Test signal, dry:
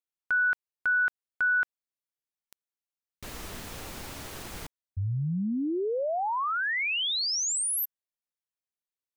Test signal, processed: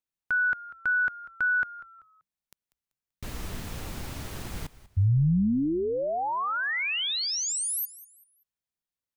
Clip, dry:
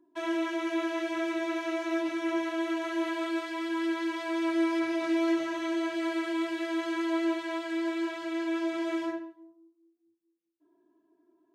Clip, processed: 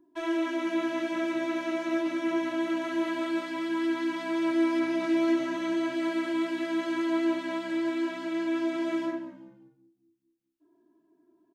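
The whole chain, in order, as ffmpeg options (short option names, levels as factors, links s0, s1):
-filter_complex "[0:a]bass=f=250:g=8,treble=f=4000:g=-1,asplit=4[s0][s1][s2][s3];[s1]adelay=193,afreqshift=-66,volume=0.126[s4];[s2]adelay=386,afreqshift=-132,volume=0.0403[s5];[s3]adelay=579,afreqshift=-198,volume=0.0129[s6];[s0][s4][s5][s6]amix=inputs=4:normalize=0"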